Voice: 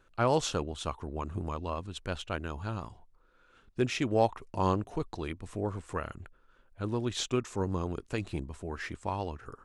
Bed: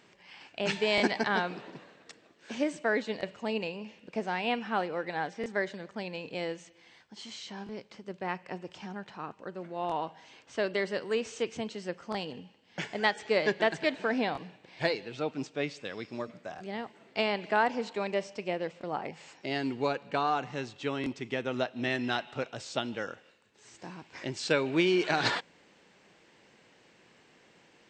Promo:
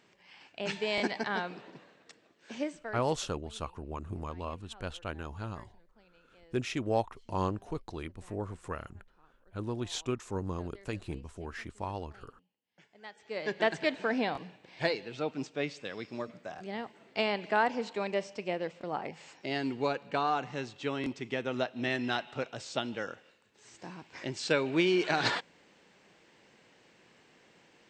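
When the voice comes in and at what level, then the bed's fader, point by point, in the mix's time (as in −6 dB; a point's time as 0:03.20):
2.75 s, −3.5 dB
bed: 0:02.64 −4.5 dB
0:03.33 −26 dB
0:12.92 −26 dB
0:13.63 −1 dB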